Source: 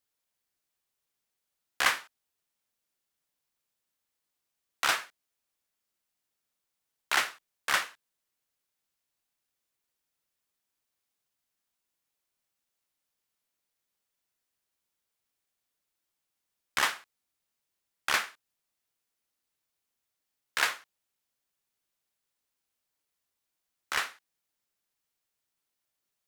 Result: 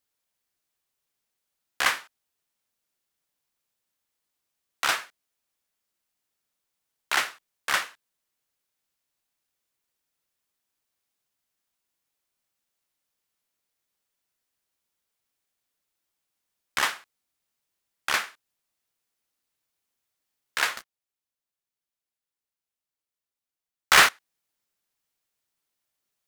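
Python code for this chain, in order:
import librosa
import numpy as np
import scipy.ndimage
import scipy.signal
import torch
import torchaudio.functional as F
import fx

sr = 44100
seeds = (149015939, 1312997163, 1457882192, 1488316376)

y = fx.leveller(x, sr, passes=5, at=(20.77, 24.09))
y = y * librosa.db_to_amplitude(2.0)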